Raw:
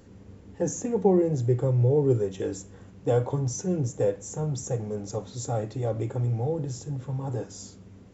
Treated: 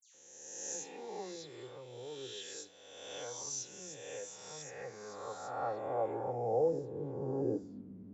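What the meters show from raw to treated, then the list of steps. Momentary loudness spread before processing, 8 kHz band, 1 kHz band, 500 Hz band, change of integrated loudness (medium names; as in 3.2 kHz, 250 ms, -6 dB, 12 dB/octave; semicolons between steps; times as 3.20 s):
12 LU, no reading, -3.5 dB, -10.5 dB, -12.0 dB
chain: reverse spectral sustain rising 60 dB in 1.48 s; band-pass sweep 3.7 kHz -> 240 Hz, 3.81–7.77 s; phase dispersion lows, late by 145 ms, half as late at 3 kHz; trim +1.5 dB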